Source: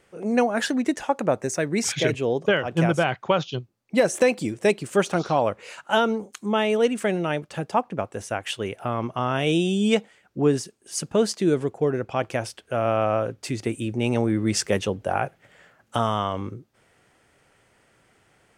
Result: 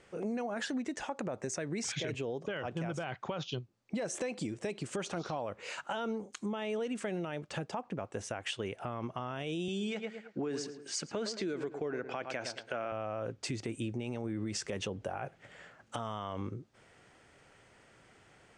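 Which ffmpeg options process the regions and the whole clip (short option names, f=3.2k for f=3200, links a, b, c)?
-filter_complex "[0:a]asettb=1/sr,asplit=3[a][b][c];[a]atrim=end=9.684[d];[b]atrim=start=9.68:end=12.92,asetpts=PTS-STARTPTS,afade=t=in:d=0.004:c=qsin,afade=t=out:st=3.236:d=0.004:c=qsin,highpass=210,equalizer=f=1.5k:t=q:w=4:g=6,equalizer=f=2.2k:t=q:w=4:g=6,equalizer=f=4.3k:t=q:w=4:g=5,lowpass=f=8.4k:w=0.5412,lowpass=f=8.4k:w=1.3066,asplit=2[e][f];[f]adelay=109,lowpass=f=2k:p=1,volume=-13dB,asplit=2[g][h];[h]adelay=109,lowpass=f=2k:p=1,volume=0.32,asplit=2[i][j];[j]adelay=109,lowpass=f=2k:p=1,volume=0.32[k];[e][g][i][k]amix=inputs=4:normalize=0,atrim=end_sample=142884[l];[c]atrim=start=12.916[m];[d][l]acrossfade=d=0.004:c1=hsin:c2=qsin[n];[n][m]acrossfade=d=0.004:c1=qsin:c2=hsin,lowpass=f=8.4k:w=0.5412,lowpass=f=8.4k:w=1.3066,alimiter=limit=-19dB:level=0:latency=1:release=58,acompressor=threshold=-36dB:ratio=3"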